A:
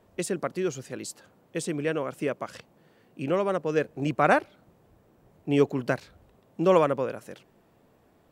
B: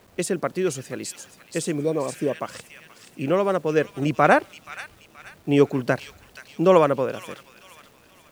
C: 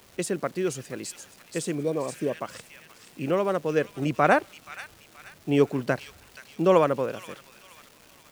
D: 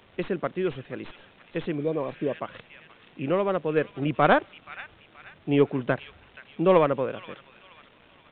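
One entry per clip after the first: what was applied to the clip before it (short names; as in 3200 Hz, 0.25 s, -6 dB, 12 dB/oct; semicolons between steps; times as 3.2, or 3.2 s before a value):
requantised 10-bit, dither none; thin delay 0.477 s, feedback 41%, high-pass 2600 Hz, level -6 dB; spectral repair 1.8–2.33, 1200–3500 Hz both; gain +4.5 dB
crackle 570/s -38 dBFS; gain -3.5 dB
tracing distortion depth 0.09 ms; downsampling 8000 Hz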